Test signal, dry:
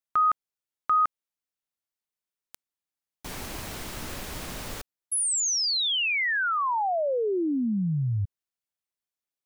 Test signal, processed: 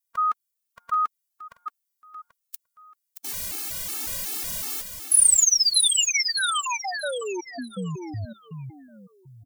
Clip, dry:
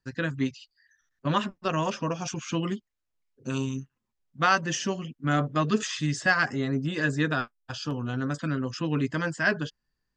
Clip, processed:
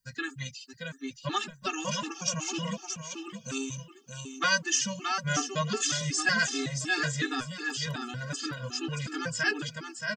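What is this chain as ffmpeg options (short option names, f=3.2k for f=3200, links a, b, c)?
-af "aecho=1:1:625|1250|1875|2500:0.501|0.14|0.0393|0.011,crystalizer=i=5.5:c=0,afftfilt=real='re*gt(sin(2*PI*2.7*pts/sr)*(1-2*mod(floor(b*sr/1024/230),2)),0)':imag='im*gt(sin(2*PI*2.7*pts/sr)*(1-2*mod(floor(b*sr/1024/230),2)),0)':win_size=1024:overlap=0.75,volume=-4dB"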